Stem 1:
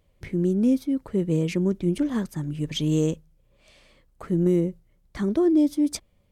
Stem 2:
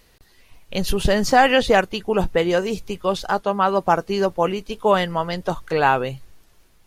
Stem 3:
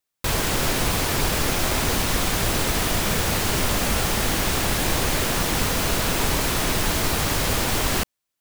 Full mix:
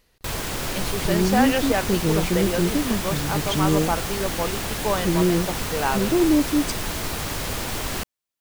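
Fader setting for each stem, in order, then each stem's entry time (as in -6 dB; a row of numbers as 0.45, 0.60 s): +1.0, -7.5, -5.5 dB; 0.75, 0.00, 0.00 s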